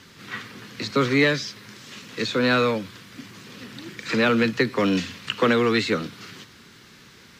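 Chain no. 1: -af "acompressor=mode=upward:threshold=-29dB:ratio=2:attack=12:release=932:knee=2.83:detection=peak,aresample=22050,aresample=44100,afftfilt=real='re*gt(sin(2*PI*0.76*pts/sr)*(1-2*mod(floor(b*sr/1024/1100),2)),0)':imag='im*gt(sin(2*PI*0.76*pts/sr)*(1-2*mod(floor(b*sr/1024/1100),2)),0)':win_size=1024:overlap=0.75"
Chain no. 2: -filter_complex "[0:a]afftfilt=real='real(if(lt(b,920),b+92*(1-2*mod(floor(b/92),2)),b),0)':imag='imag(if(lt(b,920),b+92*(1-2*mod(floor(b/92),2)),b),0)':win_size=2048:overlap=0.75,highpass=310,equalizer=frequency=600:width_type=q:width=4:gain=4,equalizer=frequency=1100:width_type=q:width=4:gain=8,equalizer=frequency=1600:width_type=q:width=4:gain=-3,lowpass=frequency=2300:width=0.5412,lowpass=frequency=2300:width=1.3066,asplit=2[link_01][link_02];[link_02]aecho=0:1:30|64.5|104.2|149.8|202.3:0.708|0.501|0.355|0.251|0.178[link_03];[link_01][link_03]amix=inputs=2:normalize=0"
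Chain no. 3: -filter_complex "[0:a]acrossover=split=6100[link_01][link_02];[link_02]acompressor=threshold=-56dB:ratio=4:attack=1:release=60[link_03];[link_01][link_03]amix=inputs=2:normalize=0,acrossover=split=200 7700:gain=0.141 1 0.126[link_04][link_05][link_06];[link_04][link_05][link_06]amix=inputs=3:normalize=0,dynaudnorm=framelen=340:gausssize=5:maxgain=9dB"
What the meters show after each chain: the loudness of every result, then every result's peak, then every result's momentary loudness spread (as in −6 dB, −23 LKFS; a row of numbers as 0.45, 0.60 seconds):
−25.5, −21.0, −17.5 LKFS; −8.0, −6.5, −2.0 dBFS; 21, 22, 21 LU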